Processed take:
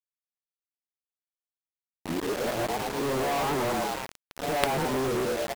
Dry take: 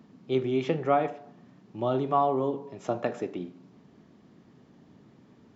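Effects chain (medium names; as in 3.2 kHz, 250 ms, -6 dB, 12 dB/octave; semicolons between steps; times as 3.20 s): reverse the whole clip; boxcar filter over 17 samples; on a send: frequency-shifting echo 109 ms, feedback 51%, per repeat +100 Hz, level -6 dB; on the sum: companded quantiser 2-bit; warped record 78 rpm, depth 100 cents; trim -1.5 dB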